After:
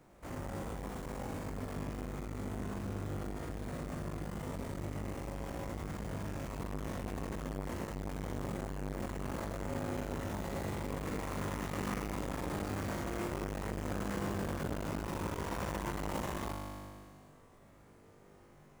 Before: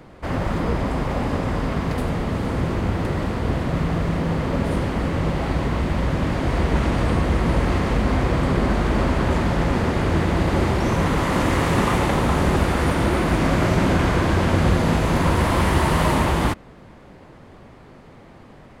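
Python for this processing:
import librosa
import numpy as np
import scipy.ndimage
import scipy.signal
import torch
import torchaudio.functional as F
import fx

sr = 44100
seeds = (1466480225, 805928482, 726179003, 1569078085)

y = fx.sample_hold(x, sr, seeds[0], rate_hz=8500.0, jitter_pct=20)
y = fx.comb_fb(y, sr, f0_hz=50.0, decay_s=1.7, harmonics='all', damping=0.0, mix_pct=90)
y = fx.transformer_sat(y, sr, knee_hz=570.0)
y = y * librosa.db_to_amplitude(-2.0)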